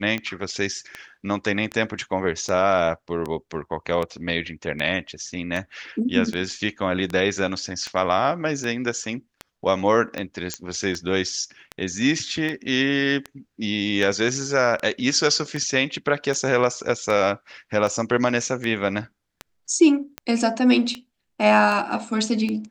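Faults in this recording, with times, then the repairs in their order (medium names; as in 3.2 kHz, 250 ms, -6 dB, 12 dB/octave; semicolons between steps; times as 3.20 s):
tick 78 rpm -15 dBFS
10.54 s: pop -10 dBFS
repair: de-click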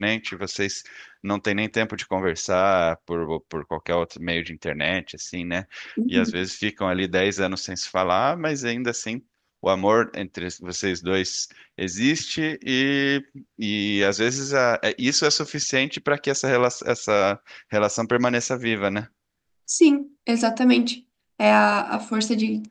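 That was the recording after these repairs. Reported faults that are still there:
nothing left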